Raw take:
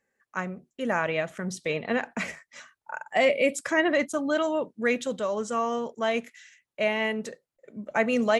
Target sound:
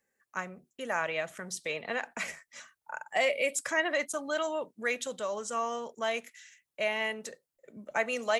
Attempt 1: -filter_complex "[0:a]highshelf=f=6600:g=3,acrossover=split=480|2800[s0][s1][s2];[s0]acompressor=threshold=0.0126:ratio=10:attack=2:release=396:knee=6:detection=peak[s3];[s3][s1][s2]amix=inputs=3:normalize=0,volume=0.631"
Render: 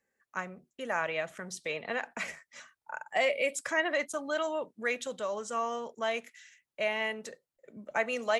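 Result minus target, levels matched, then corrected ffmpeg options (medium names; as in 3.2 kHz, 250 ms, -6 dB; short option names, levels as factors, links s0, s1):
8 kHz band -3.5 dB
-filter_complex "[0:a]highshelf=f=6600:g=10.5,acrossover=split=480|2800[s0][s1][s2];[s0]acompressor=threshold=0.0126:ratio=10:attack=2:release=396:knee=6:detection=peak[s3];[s3][s1][s2]amix=inputs=3:normalize=0,volume=0.631"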